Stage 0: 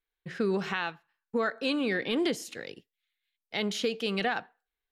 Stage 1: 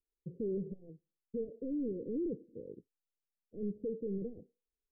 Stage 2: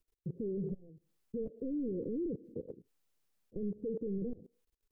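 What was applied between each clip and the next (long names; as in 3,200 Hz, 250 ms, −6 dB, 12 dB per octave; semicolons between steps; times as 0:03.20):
gain into a clipping stage and back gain 30.5 dB; Butterworth low-pass 510 Hz 72 dB per octave; level −2 dB
low-shelf EQ 370 Hz +5.5 dB; output level in coarse steps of 22 dB; brickwall limiter −42.5 dBFS, peak gain reduction 8 dB; level +11.5 dB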